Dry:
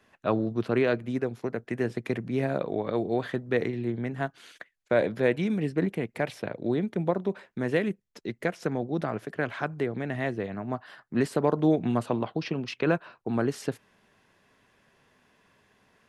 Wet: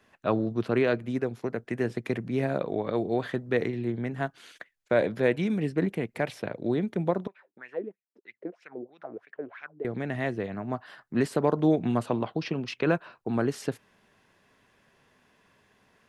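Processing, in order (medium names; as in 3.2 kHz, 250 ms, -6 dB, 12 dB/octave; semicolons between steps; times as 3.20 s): 7.27–9.85 s: wah-wah 3.1 Hz 300–2500 Hz, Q 4.9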